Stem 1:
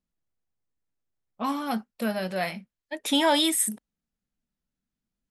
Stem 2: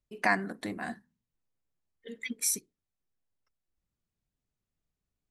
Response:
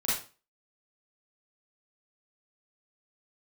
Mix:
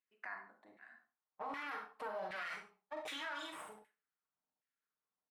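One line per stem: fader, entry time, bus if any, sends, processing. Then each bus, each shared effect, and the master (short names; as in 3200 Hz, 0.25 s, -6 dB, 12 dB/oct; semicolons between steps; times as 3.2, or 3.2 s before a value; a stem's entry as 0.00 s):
+0.5 dB, 0.00 s, send -8.5 dB, no echo send, minimum comb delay 6.5 ms; high shelf 8900 Hz +4.5 dB; compressor 10:1, threshold -32 dBFS, peak gain reduction 14 dB
-11.0 dB, 0.00 s, send -15.5 dB, echo send -22.5 dB, auto duck -16 dB, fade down 1.40 s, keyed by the first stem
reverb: on, RT60 0.35 s, pre-delay 34 ms
echo: echo 0.151 s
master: LFO band-pass saw down 1.3 Hz 740–2000 Hz; limiter -34 dBFS, peak gain reduction 9 dB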